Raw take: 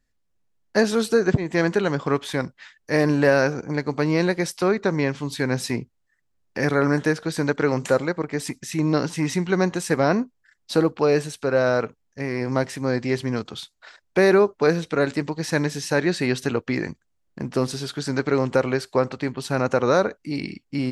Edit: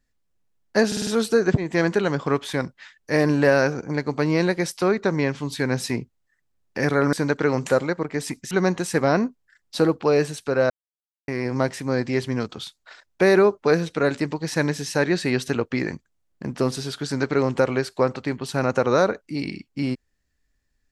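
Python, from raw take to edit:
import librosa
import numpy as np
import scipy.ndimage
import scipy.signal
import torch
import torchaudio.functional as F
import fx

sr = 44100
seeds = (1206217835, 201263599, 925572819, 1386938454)

y = fx.edit(x, sr, fx.stutter(start_s=0.87, slice_s=0.05, count=5),
    fx.cut(start_s=6.93, length_s=0.39),
    fx.cut(start_s=8.7, length_s=0.77),
    fx.silence(start_s=11.66, length_s=0.58), tone=tone)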